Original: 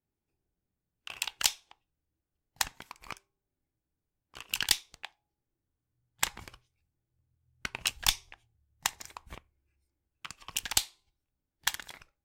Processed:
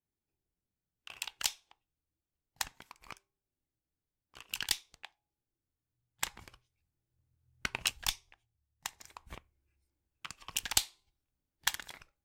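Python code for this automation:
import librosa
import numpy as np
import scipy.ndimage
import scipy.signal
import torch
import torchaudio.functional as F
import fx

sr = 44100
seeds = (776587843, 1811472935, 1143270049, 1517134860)

y = fx.gain(x, sr, db=fx.line((6.45, -6.0), (7.75, 1.5), (8.21, -10.0), (8.92, -10.0), (9.32, -1.5)))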